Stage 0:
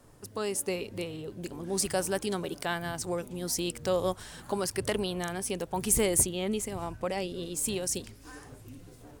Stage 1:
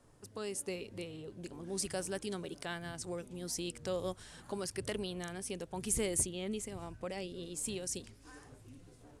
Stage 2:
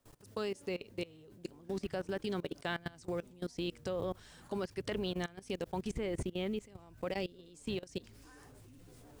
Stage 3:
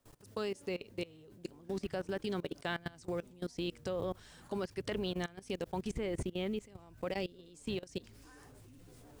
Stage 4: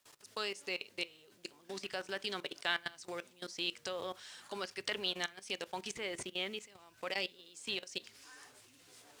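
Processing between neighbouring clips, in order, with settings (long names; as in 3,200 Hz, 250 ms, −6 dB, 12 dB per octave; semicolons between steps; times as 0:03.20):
low-pass filter 11,000 Hz 24 dB per octave; dynamic equaliser 900 Hz, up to −5 dB, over −44 dBFS, Q 1.2; level −7 dB
treble cut that deepens with the level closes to 2,500 Hz, closed at −32.5 dBFS; bit-depth reduction 12 bits, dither triangular; output level in coarse steps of 21 dB; level +6.5 dB
no processing that can be heard
resonant band-pass 4,000 Hz, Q 0.55; log-companded quantiser 8 bits; convolution reverb RT60 0.35 s, pre-delay 3 ms, DRR 17 dB; level +8.5 dB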